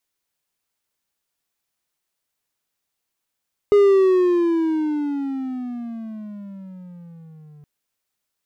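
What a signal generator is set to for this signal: gliding synth tone triangle, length 3.92 s, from 413 Hz, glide -18 st, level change -33 dB, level -7.5 dB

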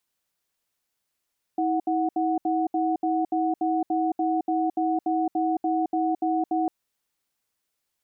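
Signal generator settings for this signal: cadence 322 Hz, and 737 Hz, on 0.22 s, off 0.07 s, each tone -24 dBFS 5.10 s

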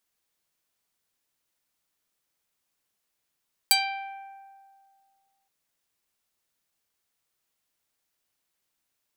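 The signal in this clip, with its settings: plucked string G5, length 1.77 s, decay 2.09 s, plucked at 0.43, medium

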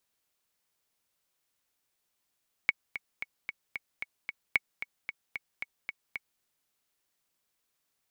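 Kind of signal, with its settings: metronome 225 bpm, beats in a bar 7, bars 2, 2.22 kHz, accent 12 dB -10 dBFS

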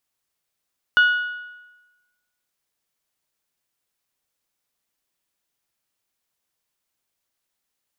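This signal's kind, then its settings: metal hit bell, lowest mode 1.46 kHz, decay 1.12 s, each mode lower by 11 dB, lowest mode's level -10 dB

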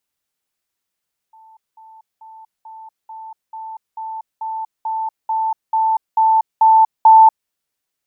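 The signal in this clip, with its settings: level ladder 885 Hz -43 dBFS, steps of 3 dB, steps 14, 0.24 s 0.20 s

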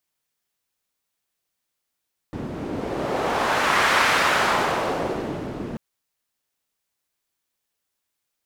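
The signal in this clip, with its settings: wind-like swept noise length 3.44 s, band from 250 Hz, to 1.5 kHz, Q 1.1, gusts 1, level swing 12 dB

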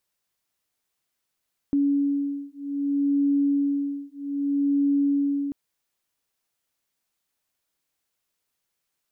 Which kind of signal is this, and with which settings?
beating tones 282 Hz, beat 0.63 Hz, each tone -24 dBFS 3.79 s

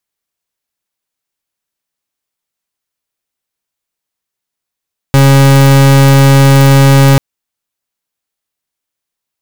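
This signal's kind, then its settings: pulse 137 Hz, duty 39% -4.5 dBFS 2.04 s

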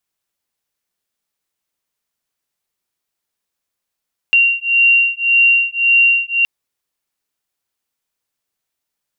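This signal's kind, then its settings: beating tones 2.76 kHz, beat 1.8 Hz, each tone -13 dBFS 2.12 s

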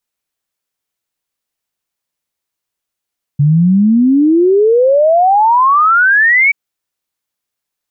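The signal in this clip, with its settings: log sweep 140 Hz -> 2.3 kHz 3.13 s -6 dBFS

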